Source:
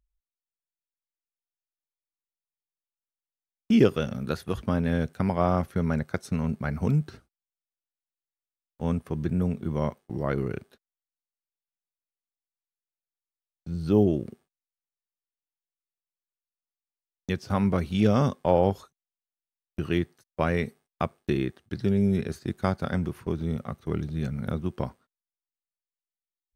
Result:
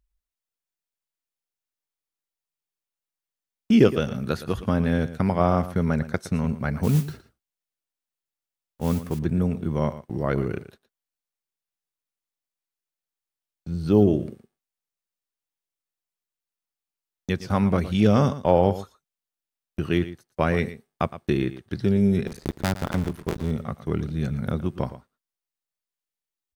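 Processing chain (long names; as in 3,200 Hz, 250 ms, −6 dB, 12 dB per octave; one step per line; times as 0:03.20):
0:22.27–0:23.51: sub-harmonics by changed cycles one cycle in 2, muted
single-tap delay 115 ms −14.5 dB
0:06.83–0:09.19: noise that follows the level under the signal 20 dB
level +3 dB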